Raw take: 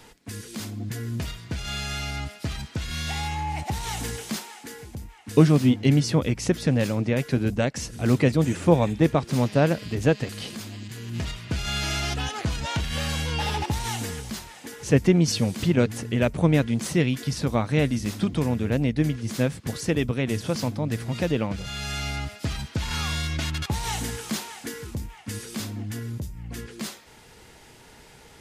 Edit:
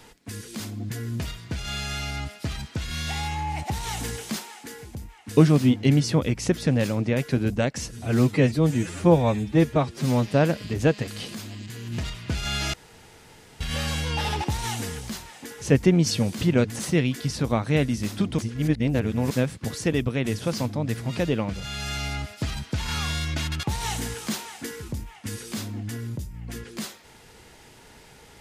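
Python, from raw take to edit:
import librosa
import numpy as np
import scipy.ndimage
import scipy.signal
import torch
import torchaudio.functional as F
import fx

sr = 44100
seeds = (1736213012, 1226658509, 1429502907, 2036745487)

y = fx.edit(x, sr, fx.stretch_span(start_s=7.92, length_s=1.57, factor=1.5),
    fx.room_tone_fill(start_s=11.95, length_s=0.87),
    fx.cut(start_s=16.01, length_s=0.81),
    fx.reverse_span(start_s=18.41, length_s=0.92), tone=tone)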